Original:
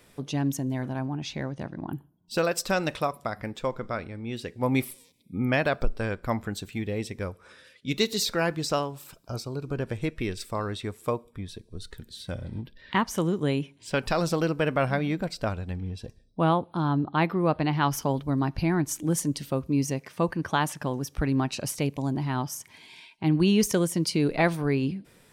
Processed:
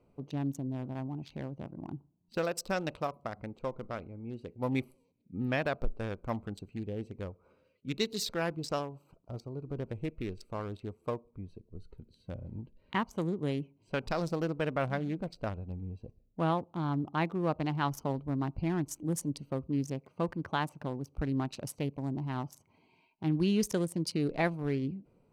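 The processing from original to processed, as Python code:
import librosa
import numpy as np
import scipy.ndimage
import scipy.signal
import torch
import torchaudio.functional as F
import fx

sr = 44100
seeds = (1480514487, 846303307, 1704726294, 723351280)

y = fx.wiener(x, sr, points=25)
y = y * 10.0 ** (-6.5 / 20.0)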